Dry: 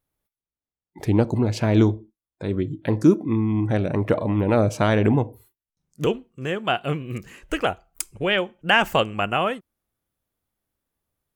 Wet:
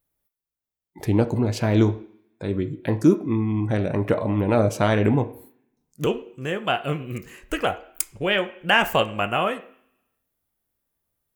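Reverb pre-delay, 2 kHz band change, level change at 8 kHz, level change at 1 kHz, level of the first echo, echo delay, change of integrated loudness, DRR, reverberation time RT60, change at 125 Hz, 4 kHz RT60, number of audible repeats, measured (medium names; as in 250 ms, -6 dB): 18 ms, -0.5 dB, +2.0 dB, -0.5 dB, no echo, no echo, -0.5 dB, 8.0 dB, 0.60 s, -1.0 dB, 0.80 s, no echo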